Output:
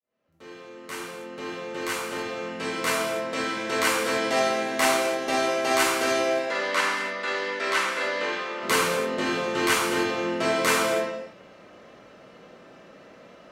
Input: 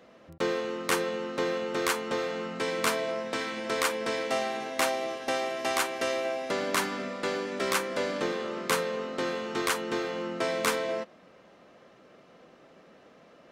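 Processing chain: opening faded in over 4.36 s; 6.38–8.63 band-pass 1900 Hz, Q 0.55; non-linear reverb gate 0.33 s falling, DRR -6 dB

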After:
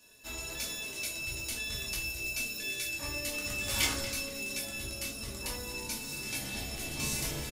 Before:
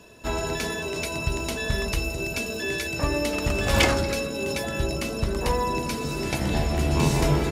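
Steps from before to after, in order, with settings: pre-emphasis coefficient 0.9; on a send: frequency-shifting echo 0.235 s, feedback 35%, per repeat -100 Hz, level -14 dB; on the sum: shoebox room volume 220 m³, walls furnished, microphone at 2.5 m; gain -4 dB

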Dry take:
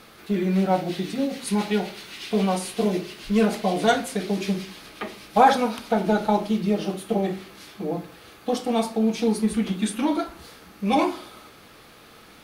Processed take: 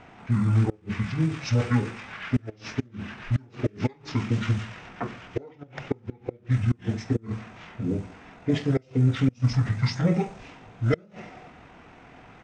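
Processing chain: flipped gate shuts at -12 dBFS, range -31 dB; pitch shift -9.5 st; low-pass opened by the level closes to 2900 Hz, open at -18.5 dBFS; gain +1 dB

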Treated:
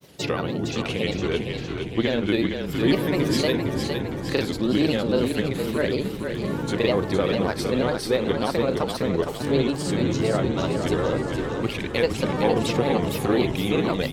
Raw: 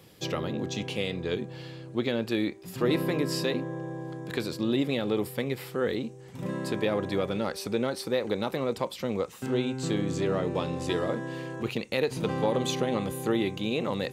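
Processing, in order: grains, spray 34 ms, pitch spread up and down by 3 st; frequency-shifting echo 0.46 s, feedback 55%, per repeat -34 Hz, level -6 dB; gain +6 dB

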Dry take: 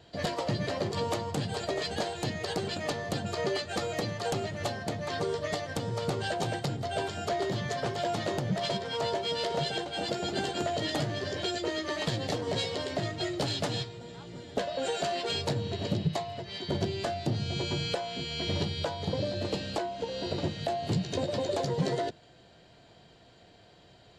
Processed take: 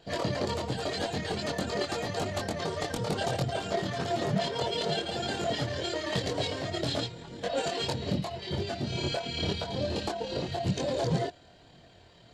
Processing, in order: granular stretch 0.51×, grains 56 ms; chorus voices 4, 0.84 Hz, delay 23 ms, depth 2.4 ms; gain +5 dB

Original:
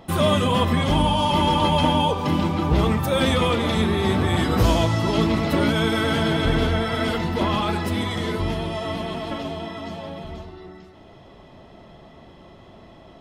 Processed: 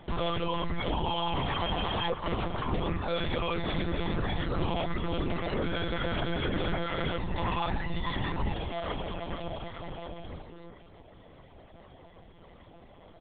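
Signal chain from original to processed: 1.45–2.79 minimum comb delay 1.9 ms; reverb removal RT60 0.97 s; 7.3–8.54 comb 1.1 ms, depth 81%; limiter -17.5 dBFS, peak gain reduction 9.5 dB; echo 0.611 s -13.5 dB; monotone LPC vocoder at 8 kHz 170 Hz; gain -4 dB

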